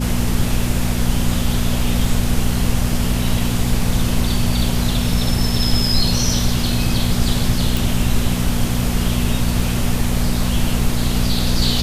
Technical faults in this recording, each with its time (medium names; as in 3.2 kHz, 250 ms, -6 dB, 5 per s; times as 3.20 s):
hum 60 Hz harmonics 4 -21 dBFS
7.77 s: pop